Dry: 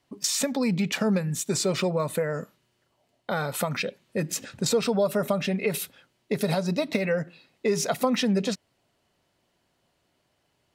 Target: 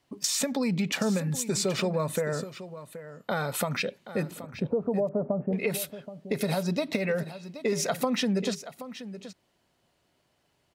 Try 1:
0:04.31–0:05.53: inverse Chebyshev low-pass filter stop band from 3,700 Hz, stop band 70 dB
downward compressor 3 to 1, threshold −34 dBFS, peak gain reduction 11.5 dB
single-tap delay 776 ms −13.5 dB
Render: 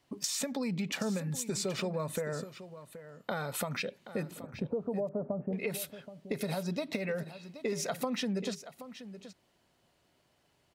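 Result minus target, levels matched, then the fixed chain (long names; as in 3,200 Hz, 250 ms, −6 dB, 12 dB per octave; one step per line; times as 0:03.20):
downward compressor: peak gain reduction +6.5 dB
0:04.31–0:05.53: inverse Chebyshev low-pass filter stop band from 3,700 Hz, stop band 70 dB
downward compressor 3 to 1, threshold −24 dBFS, peak gain reduction 5 dB
single-tap delay 776 ms −13.5 dB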